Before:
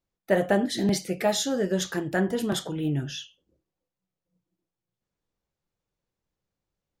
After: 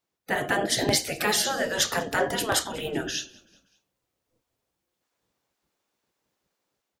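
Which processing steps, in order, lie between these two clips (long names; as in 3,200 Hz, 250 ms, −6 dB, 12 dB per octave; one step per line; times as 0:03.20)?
in parallel at −1 dB: brickwall limiter −17 dBFS, peak gain reduction 7.5 dB
on the sum: hum removal 76.68 Hz, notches 10
gate on every frequency bin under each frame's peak −10 dB weak
automatic gain control gain up to 5 dB
echo with shifted repeats 191 ms, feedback 49%, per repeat −35 Hz, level −24 dB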